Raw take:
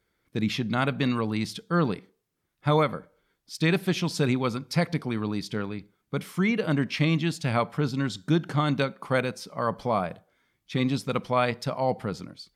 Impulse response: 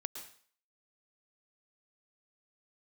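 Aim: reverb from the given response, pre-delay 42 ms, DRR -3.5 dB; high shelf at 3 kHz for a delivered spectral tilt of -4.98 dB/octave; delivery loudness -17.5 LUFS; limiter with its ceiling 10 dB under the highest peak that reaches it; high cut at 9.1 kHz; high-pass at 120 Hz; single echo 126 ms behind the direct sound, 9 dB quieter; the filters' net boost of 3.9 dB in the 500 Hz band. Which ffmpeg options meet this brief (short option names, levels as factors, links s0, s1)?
-filter_complex "[0:a]highpass=120,lowpass=9100,equalizer=f=500:t=o:g=4.5,highshelf=f=3000:g=7,alimiter=limit=0.141:level=0:latency=1,aecho=1:1:126:0.355,asplit=2[s0][s1];[1:a]atrim=start_sample=2205,adelay=42[s2];[s1][s2]afir=irnorm=-1:irlink=0,volume=1.78[s3];[s0][s3]amix=inputs=2:normalize=0,volume=2"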